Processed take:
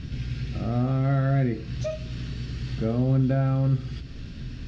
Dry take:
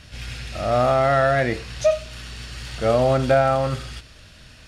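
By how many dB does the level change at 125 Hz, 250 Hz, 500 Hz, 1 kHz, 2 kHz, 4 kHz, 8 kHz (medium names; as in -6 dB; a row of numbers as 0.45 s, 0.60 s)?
+4.0 dB, +2.5 dB, -13.5 dB, -16.0 dB, -14.0 dB, -10.0 dB, under -10 dB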